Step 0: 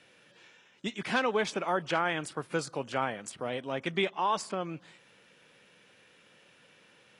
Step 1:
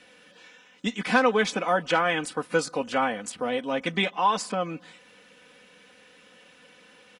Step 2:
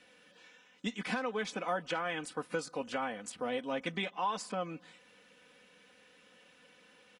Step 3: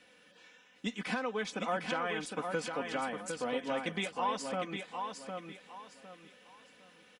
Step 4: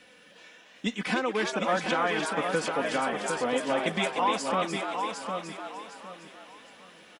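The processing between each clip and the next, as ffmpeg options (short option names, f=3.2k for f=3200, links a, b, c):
-af "aecho=1:1:4:0.7,volume=4.5dB"
-af "alimiter=limit=-15.5dB:level=0:latency=1:release=370,volume=-7.5dB"
-af "aecho=1:1:757|1514|2271|3028:0.531|0.154|0.0446|0.0129"
-filter_complex "[0:a]asplit=5[a][b][c][d][e];[b]adelay=299,afreqshift=130,volume=-6dB[f];[c]adelay=598,afreqshift=260,volume=-15.6dB[g];[d]adelay=897,afreqshift=390,volume=-25.3dB[h];[e]adelay=1196,afreqshift=520,volume=-34.9dB[i];[a][f][g][h][i]amix=inputs=5:normalize=0,volume=6.5dB"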